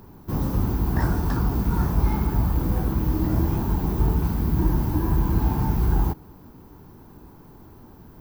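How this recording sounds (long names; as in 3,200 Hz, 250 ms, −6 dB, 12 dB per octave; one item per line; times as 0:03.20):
background noise floor −48 dBFS
spectral slope −5.5 dB per octave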